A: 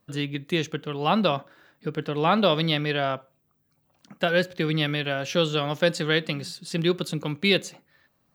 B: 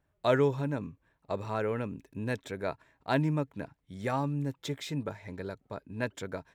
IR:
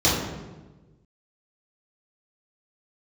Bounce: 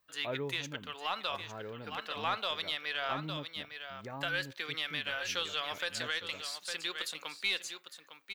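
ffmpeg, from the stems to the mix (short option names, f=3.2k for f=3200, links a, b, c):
-filter_complex "[0:a]highpass=1.1k,asoftclip=type=tanh:threshold=-11dB,aeval=exprs='0.266*(cos(1*acos(clip(val(0)/0.266,-1,1)))-cos(1*PI/2))+0.00668*(cos(4*acos(clip(val(0)/0.266,-1,1)))-cos(4*PI/2))':c=same,volume=-3dB,asplit=2[a][b];[b]volume=-11dB[c];[1:a]lowpass=3k,volume=-12.5dB[d];[c]aecho=0:1:856:1[e];[a][d][e]amix=inputs=3:normalize=0,alimiter=limit=-22dB:level=0:latency=1:release=162"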